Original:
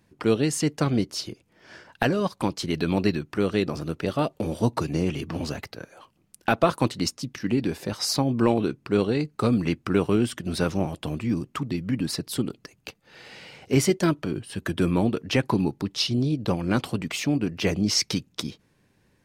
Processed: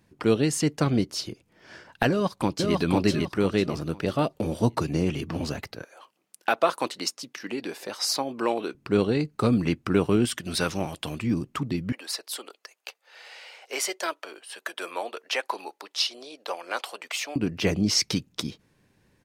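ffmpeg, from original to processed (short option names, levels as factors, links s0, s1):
-filter_complex "[0:a]asplit=2[s0][s1];[s1]afade=t=in:st=2.09:d=0.01,afade=t=out:st=2.78:d=0.01,aecho=0:1:500|1000|1500|2000:0.794328|0.238298|0.0714895|0.0214469[s2];[s0][s2]amix=inputs=2:normalize=0,asettb=1/sr,asplit=3[s3][s4][s5];[s3]atrim=end=5.834[s6];[s4]atrim=start=5.83:end=8.75,asetpts=PTS-STARTPTS,afade=t=in:d=0.004:c=qsin,afade=t=out:st=2.916:d=0.004:c=qsin,highpass=460[s7];[s5]atrim=start=8.746[s8];[s6][s7]acrossfade=d=0.004:c1=hsin:c2=qsin[s9];[s9][s8]acrossfade=d=0.004:c1=qsin:c2=hsin,asettb=1/sr,asplit=3[s10][s11][s12];[s10]atrim=end=10.254[s13];[s11]atrim=start=10.25:end=11.22,asetpts=PTS-STARTPTS,afade=t=in:d=0.004:c=qsin,afade=t=out:st=0.966:d=0.004:c=qsin,tiltshelf=f=850:g=-5.5[s14];[s12]atrim=start=11.216[s15];[s13][s14]acrossfade=d=0.004:c1=hsin:c2=qsin[s16];[s16][s15]acrossfade=d=0.004:c1=qsin:c2=hsin,asettb=1/sr,asplit=3[s17][s18][s19];[s17]atrim=end=11.924[s20];[s18]atrim=start=11.92:end=17.36,asetpts=PTS-STARTPTS,afade=t=in:d=0.004:c=qsin,afade=t=out:st=5.436:d=0.004:c=qsin,highpass=f=560:w=0.5412,highpass=f=560:w=1.3066[s21];[s19]atrim=start=17.356[s22];[s20][s21]acrossfade=d=0.004:c1=hsin:c2=qsin[s23];[s23][s22]acrossfade=d=0.004:c1=qsin:c2=hsin"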